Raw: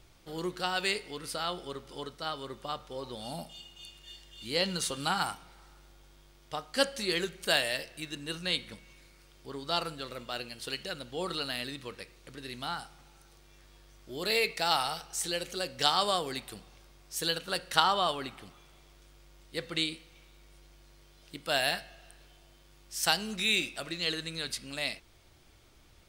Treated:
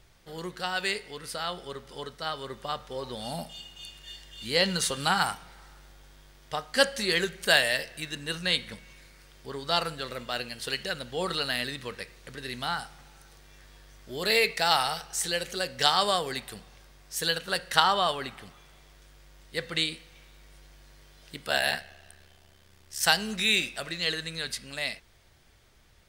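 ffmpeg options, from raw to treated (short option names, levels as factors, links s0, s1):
-filter_complex "[0:a]asettb=1/sr,asplit=3[s0][s1][s2];[s0]atrim=end=21.474[s3];[s1]atrim=start=21.47:end=23.01,asetpts=PTS-STARTPTS,afade=t=in:d=0.004:c=qsin,afade=t=out:st=1.536:d=0.004:c=qsin,aeval=exprs='val(0)*sin(2*PI*35*n/s)':c=same[s4];[s2]atrim=start=23.006[s5];[s3][s4]acrossfade=d=0.004:c1=hsin:c2=qsin[s6];[s6][s5]acrossfade=d=0.004:c1=qsin:c2=hsin,superequalizer=6b=0.562:11b=1.58,dynaudnorm=f=690:g=7:m=1.78"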